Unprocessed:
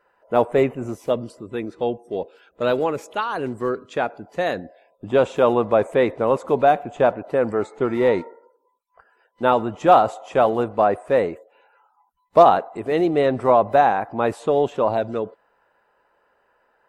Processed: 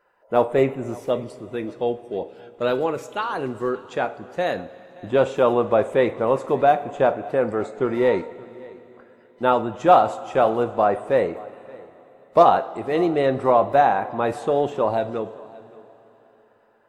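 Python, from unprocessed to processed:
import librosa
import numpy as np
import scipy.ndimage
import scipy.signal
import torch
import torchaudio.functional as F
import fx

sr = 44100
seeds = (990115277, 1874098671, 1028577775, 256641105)

y = x + 10.0 ** (-22.5 / 20.0) * np.pad(x, (int(574 * sr / 1000.0), 0))[:len(x)]
y = fx.rev_double_slope(y, sr, seeds[0], early_s=0.33, late_s=4.1, knee_db=-18, drr_db=9.0)
y = y * librosa.db_to_amplitude(-1.5)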